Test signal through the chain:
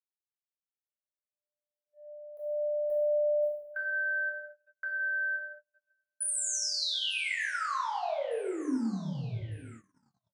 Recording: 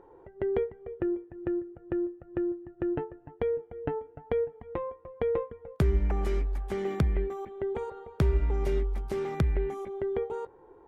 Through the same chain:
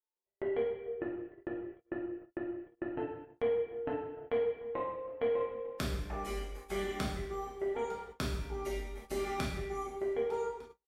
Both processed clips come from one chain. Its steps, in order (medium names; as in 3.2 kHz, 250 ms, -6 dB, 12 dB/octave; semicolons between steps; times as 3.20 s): expander on every frequency bin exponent 1.5; treble shelf 2.2 kHz +8 dB; doubling 27 ms -6.5 dB; compression 10:1, threshold -34 dBFS; shuffle delay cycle 1204 ms, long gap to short 3:1, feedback 44%, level -21 dB; two-slope reverb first 0.86 s, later 2.2 s, from -20 dB, DRR -5 dB; gate -45 dBFS, range -38 dB; trim -2.5 dB